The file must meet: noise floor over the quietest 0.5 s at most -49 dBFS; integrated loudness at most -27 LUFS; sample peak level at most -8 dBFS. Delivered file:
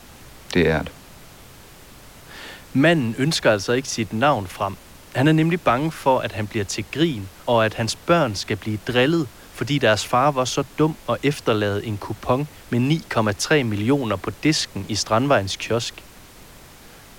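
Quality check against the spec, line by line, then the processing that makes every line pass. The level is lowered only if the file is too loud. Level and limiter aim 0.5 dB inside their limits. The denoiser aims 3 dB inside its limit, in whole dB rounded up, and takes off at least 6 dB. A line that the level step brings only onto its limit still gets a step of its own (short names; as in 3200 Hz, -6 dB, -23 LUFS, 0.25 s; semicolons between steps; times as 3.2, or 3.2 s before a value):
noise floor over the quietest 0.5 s -45 dBFS: fail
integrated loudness -21.0 LUFS: fail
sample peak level -5.5 dBFS: fail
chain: gain -6.5 dB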